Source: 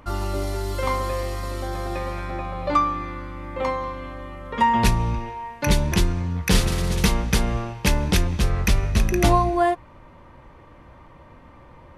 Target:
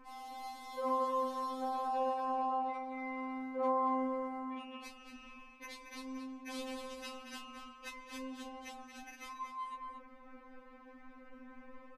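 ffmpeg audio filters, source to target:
-filter_complex "[0:a]highshelf=f=5400:g=-9.5,areverse,acompressor=threshold=0.0398:ratio=8,areverse,asplit=2[s0][s1];[s1]adelay=24,volume=0.316[s2];[s0][s2]amix=inputs=2:normalize=0,asplit=2[s3][s4];[s4]adelay=227.4,volume=0.501,highshelf=f=4000:g=-5.12[s5];[s3][s5]amix=inputs=2:normalize=0,afftfilt=real='re*3.46*eq(mod(b,12),0)':imag='im*3.46*eq(mod(b,12),0)':win_size=2048:overlap=0.75,volume=0.562"

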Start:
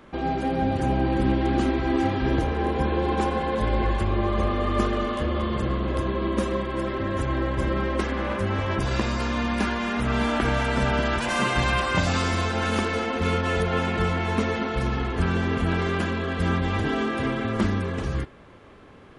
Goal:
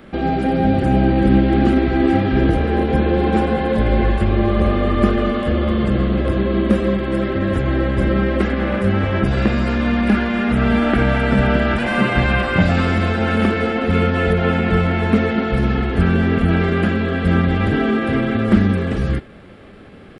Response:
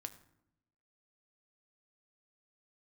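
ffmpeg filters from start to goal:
-filter_complex "[0:a]equalizer=f=200:t=o:w=0.33:g=6,equalizer=f=1000:t=o:w=0.33:g=-11,equalizer=f=6300:t=o:w=0.33:g=-9,acrossover=split=2900[s0][s1];[s1]acompressor=threshold=0.00355:ratio=4:attack=1:release=60[s2];[s0][s2]amix=inputs=2:normalize=0,atempo=0.95,volume=2.37"

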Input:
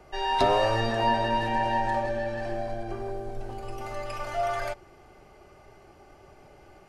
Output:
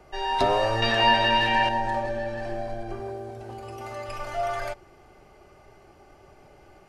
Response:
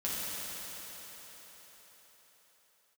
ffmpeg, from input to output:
-filter_complex "[0:a]asettb=1/sr,asplit=3[s0][s1][s2];[s0]atrim=end=0.824[s3];[s1]atrim=start=0.82:end=1.69,asetpts=PTS-STARTPTS,afade=t=in:d=0.004:c=qsin,afade=t=out:st=0.866:d=0.004:c=qsin,equalizer=f=2800:w=0.59:g=13[s4];[s2]atrim=start=1.686[s5];[s3][s4]acrossfade=d=0.004:c1=hsin:c2=qsin[s6];[s6][s5]acrossfade=d=0.004:c1=qsin:c2=hsin,asettb=1/sr,asplit=3[s7][s8][s9];[s7]atrim=end=3.004[s10];[s8]atrim=start=3:end=4.09,asetpts=PTS-STARTPTS,afade=t=in:d=0.004:c=qsin,afade=t=out:st=1.086:d=0.004:c=qsin,highpass=f=53:w=0.5412,highpass=f=53:w=1.3066[s11];[s9]atrim=start=4.086[s12];[s10][s11]acrossfade=d=0.004:c1=hsin:c2=qsin[s13];[s13][s12]acrossfade=d=0.004:c1=qsin:c2=hsin"

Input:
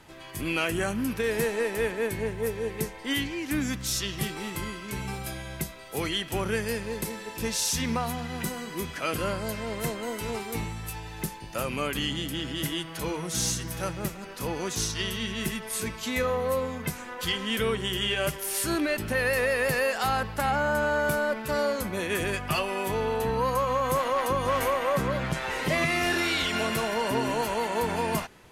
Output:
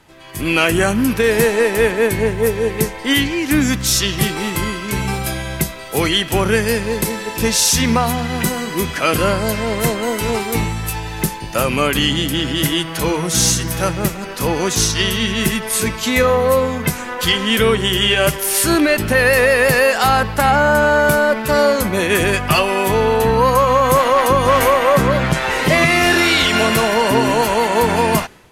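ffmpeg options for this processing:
-af "dynaudnorm=f=110:g=7:m=3.76,volume=1.26"

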